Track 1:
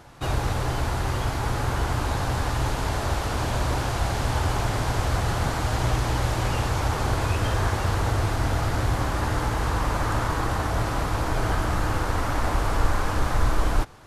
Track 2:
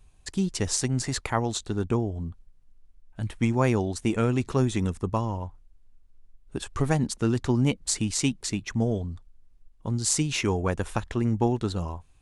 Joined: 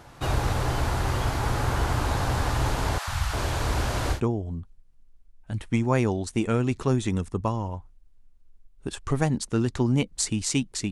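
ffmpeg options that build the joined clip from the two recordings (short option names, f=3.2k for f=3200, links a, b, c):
-filter_complex "[0:a]asettb=1/sr,asplit=3[a][b][c];[a]atrim=end=2.984[d];[b]atrim=start=2.98:end=4.21,asetpts=PTS-STARTPTS,afade=t=in:d=0.004:c=qsin,afade=t=out:st=1.226:d=0.004:c=qsin,acrossover=split=170|830[e][f][g];[e]adelay=90[h];[f]adelay=350[i];[h][i][g]amix=inputs=3:normalize=0,atrim=end_sample=54243[j];[c]atrim=start=4.206[k];[d][j]acrossfade=d=0.004:c1=hsin:c2=qsin[l];[l][k]acrossfade=d=0.004:c1=qsin:c2=hsin,apad=whole_dur=10.91,atrim=end=10.91,atrim=end=4.21,asetpts=PTS-STARTPTS[m];[1:a]atrim=start=1.8:end=8.6,asetpts=PTS-STARTPTS[n];[m][n]acrossfade=d=0.1:c1=tri:c2=tri"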